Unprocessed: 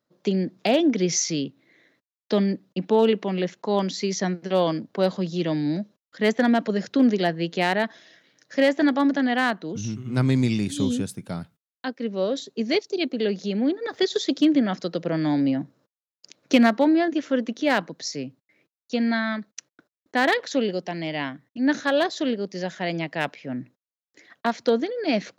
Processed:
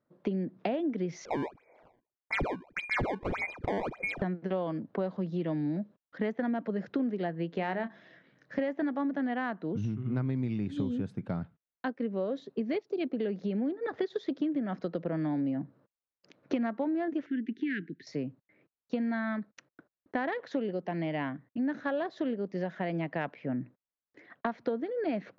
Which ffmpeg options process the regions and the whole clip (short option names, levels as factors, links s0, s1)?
-filter_complex "[0:a]asettb=1/sr,asplit=3[s0][s1][s2];[s0]atrim=end=1.254[s3];[s1]atrim=start=1.25:end=4.22,asetpts=PTS-STARTPTS,afade=t=in:d=0.004:c=qsin,afade=t=out:st=2.966:d=0.004:c=qsin,bandreject=f=60:t=h:w=6,bandreject=f=120:t=h:w=6,bandreject=f=180:t=h:w=6,bandreject=f=240:t=h:w=6,lowpass=f=2200:t=q:w=0.5098,lowpass=f=2200:t=q:w=0.6013,lowpass=f=2200:t=q:w=0.9,lowpass=f=2200:t=q:w=2.563,afreqshift=-2600,acrusher=samples=19:mix=1:aa=0.000001:lfo=1:lforange=30.4:lforate=1.7[s4];[s2]atrim=start=4.216[s5];[s3][s4]acrossfade=d=0.004:c1=hsin:c2=qsin[s6];[s6][s5]acrossfade=d=0.004:c1=qsin:c2=hsin,asettb=1/sr,asplit=3[s7][s8][s9];[s7]atrim=end=7.554[s10];[s8]atrim=start=7.55:end=8.59,asetpts=PTS-STARTPTS,afade=t=in:d=0.004:c=qsin,afade=t=out:st=1.036:d=0.004:c=qsin,bandreject=f=50:t=h:w=6,bandreject=f=100:t=h:w=6,bandreject=f=150:t=h:w=6,bandreject=f=200:t=h:w=6,bandreject=f=250:t=h:w=6,bandreject=f=300:t=h:w=6,bandreject=f=350:t=h:w=6,asubboost=boost=6.5:cutoff=220,asplit=2[s11][s12];[s12]adelay=26,volume=0.251[s13];[s11][s13]amix=inputs=2:normalize=0,atrim=end_sample=45864[s14];[s9]atrim=start=8.586[s15];[s10][s14]acrossfade=d=0.004:c1=hsin:c2=qsin[s16];[s16][s15]acrossfade=d=0.004:c1=qsin:c2=hsin,asettb=1/sr,asplit=3[s17][s18][s19];[s17]atrim=end=17.264[s20];[s18]atrim=start=17.26:end=18.07,asetpts=PTS-STARTPTS,afade=t=in:d=0.004:c=qsin,afade=t=out:st=0.806:d=0.004:c=qsin,asuperstop=centerf=800:order=12:qfactor=0.63,bass=f=250:g=-6,treble=f=4000:g=-13[s21];[s19]atrim=start=18.066[s22];[s20][s21]acrossfade=d=0.004:c1=hsin:c2=qsin[s23];[s23][s22]acrossfade=d=0.004:c1=qsin:c2=hsin,lowpass=1800,lowshelf=f=170:g=3.5,acompressor=threshold=0.0355:ratio=6"